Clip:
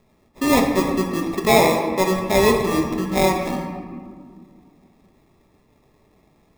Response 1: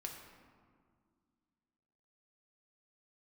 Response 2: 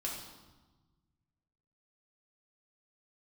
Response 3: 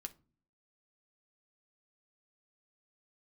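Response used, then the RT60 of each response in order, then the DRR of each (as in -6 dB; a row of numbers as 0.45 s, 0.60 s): 1; 2.0 s, 1.2 s, 0.40 s; 1.0 dB, -3.5 dB, 6.0 dB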